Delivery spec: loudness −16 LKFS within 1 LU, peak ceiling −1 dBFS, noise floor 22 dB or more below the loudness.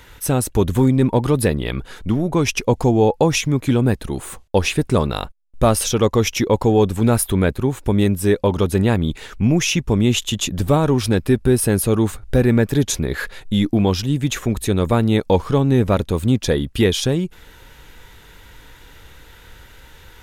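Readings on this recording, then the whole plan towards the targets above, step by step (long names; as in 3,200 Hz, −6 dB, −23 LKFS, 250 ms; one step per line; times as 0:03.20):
integrated loudness −18.5 LKFS; sample peak −5.0 dBFS; target loudness −16.0 LKFS
→ level +2.5 dB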